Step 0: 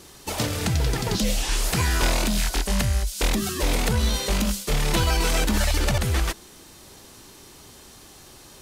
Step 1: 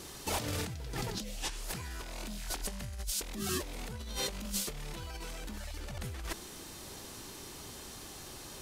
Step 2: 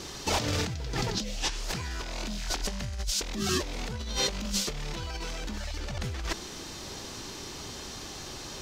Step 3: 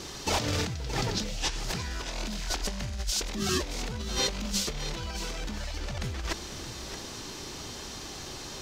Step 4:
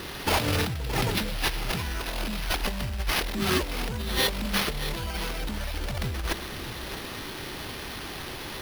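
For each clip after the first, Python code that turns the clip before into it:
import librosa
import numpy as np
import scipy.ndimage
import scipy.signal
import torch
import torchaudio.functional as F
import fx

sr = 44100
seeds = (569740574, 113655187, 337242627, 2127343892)

y1 = fx.over_compress(x, sr, threshold_db=-31.0, ratio=-1.0)
y1 = y1 * 10.0 ** (-8.0 / 20.0)
y2 = fx.high_shelf_res(y1, sr, hz=7800.0, db=-9.5, q=1.5)
y2 = y2 * 10.0 ** (6.5 / 20.0)
y3 = y2 + 10.0 ** (-11.5 / 20.0) * np.pad(y2, (int(622 * sr / 1000.0), 0))[:len(y2)]
y4 = fx.sample_hold(y3, sr, seeds[0], rate_hz=7600.0, jitter_pct=0)
y4 = y4 * 10.0 ** (3.5 / 20.0)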